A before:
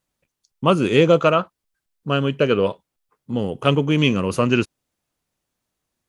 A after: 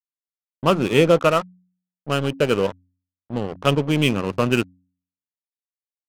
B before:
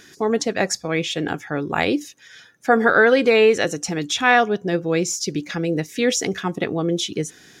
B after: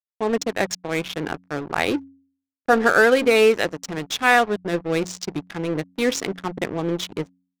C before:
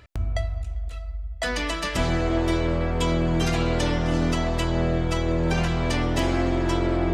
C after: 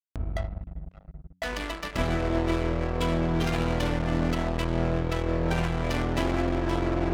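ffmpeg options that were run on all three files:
ffmpeg -i in.wav -af "aeval=exprs='sgn(val(0))*max(abs(val(0))-0.0316,0)':channel_layout=same,adynamicsmooth=sensitivity=5.5:basefreq=1000,bandreject=frequency=90.73:width_type=h:width=4,bandreject=frequency=181.46:width_type=h:width=4,bandreject=frequency=272.19:width_type=h:width=4" out.wav

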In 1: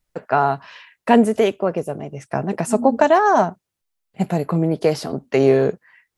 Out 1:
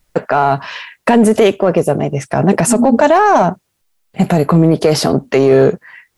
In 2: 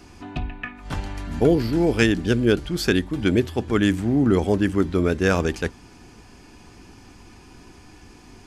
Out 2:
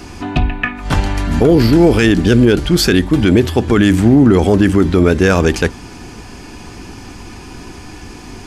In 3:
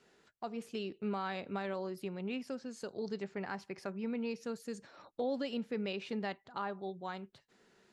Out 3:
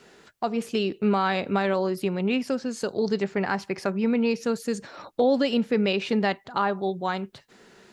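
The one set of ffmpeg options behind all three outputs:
ffmpeg -i in.wav -filter_complex "[0:a]asplit=2[link_01][link_02];[link_02]asoftclip=type=hard:threshold=-15.5dB,volume=-9dB[link_03];[link_01][link_03]amix=inputs=2:normalize=0,alimiter=level_in=12.5dB:limit=-1dB:release=50:level=0:latency=1,volume=-1dB" out.wav

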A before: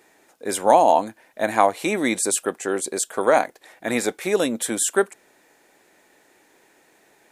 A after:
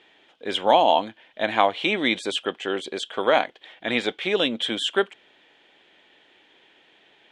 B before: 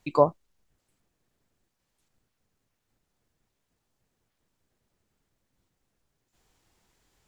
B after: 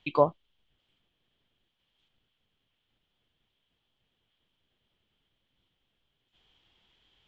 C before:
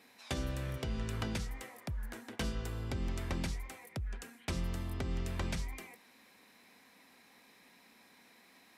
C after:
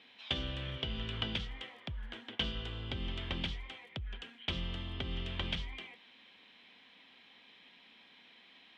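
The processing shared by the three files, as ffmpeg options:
ffmpeg -i in.wav -af "lowpass=frequency=3200:width_type=q:width=8.4,volume=-3dB" out.wav

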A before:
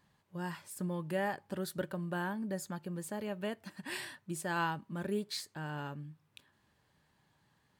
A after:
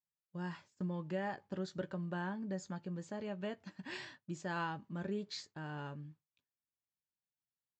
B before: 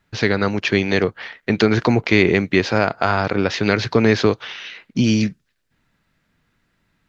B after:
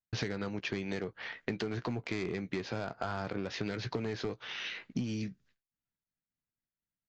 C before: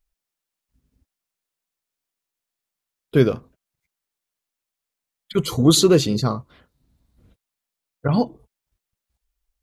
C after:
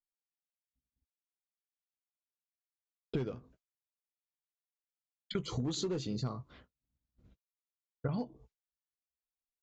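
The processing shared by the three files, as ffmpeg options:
ffmpeg -i in.wav -filter_complex "[0:a]aresample=16000,volume=10dB,asoftclip=hard,volume=-10dB,aresample=44100,lowshelf=frequency=430:gain=3.5,asplit=2[link_01][link_02];[link_02]adelay=16,volume=-12dB[link_03];[link_01][link_03]amix=inputs=2:normalize=0,agate=range=-33dB:threshold=-45dB:ratio=3:detection=peak,acompressor=threshold=-27dB:ratio=16,volume=-5dB" out.wav

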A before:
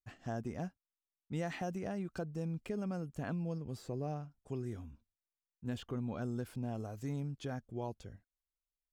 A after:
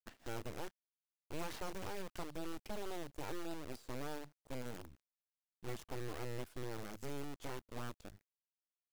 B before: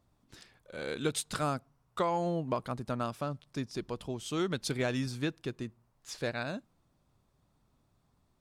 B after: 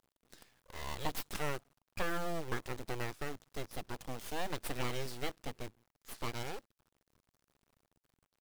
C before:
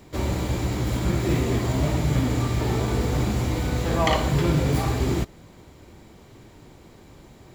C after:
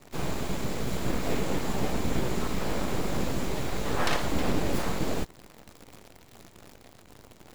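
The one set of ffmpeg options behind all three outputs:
ffmpeg -i in.wav -af "acrusher=bits=8:dc=4:mix=0:aa=0.000001,aeval=exprs='abs(val(0))':channel_layout=same,volume=-3dB" out.wav

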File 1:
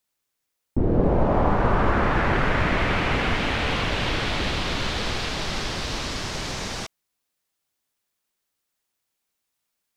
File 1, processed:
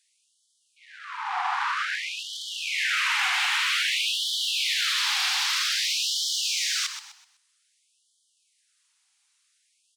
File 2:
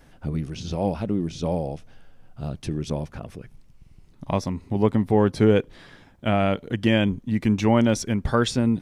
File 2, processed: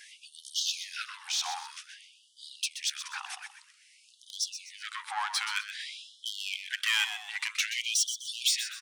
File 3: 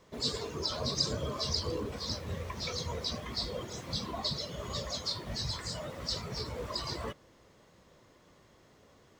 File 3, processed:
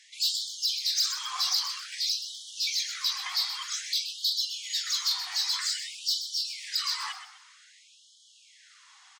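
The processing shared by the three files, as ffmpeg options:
ffmpeg -i in.wav -filter_complex "[0:a]tiltshelf=frequency=970:gain=-8,asplit=2[link_01][link_02];[link_02]acompressor=threshold=-32dB:ratio=6,volume=0.5dB[link_03];[link_01][link_03]amix=inputs=2:normalize=0,aresample=22050,aresample=44100,asoftclip=type=tanh:threshold=-20.5dB,asplit=2[link_04][link_05];[link_05]asplit=4[link_06][link_07][link_08][link_09];[link_06]adelay=126,afreqshift=94,volume=-10dB[link_10];[link_07]adelay=252,afreqshift=188,volume=-19.4dB[link_11];[link_08]adelay=378,afreqshift=282,volume=-28.7dB[link_12];[link_09]adelay=504,afreqshift=376,volume=-38.1dB[link_13];[link_10][link_11][link_12][link_13]amix=inputs=4:normalize=0[link_14];[link_04][link_14]amix=inputs=2:normalize=0,afftfilt=real='re*gte(b*sr/1024,700*pow(3000/700,0.5+0.5*sin(2*PI*0.52*pts/sr)))':imag='im*gte(b*sr/1024,700*pow(3000/700,0.5+0.5*sin(2*PI*0.52*pts/sr)))':win_size=1024:overlap=0.75" out.wav

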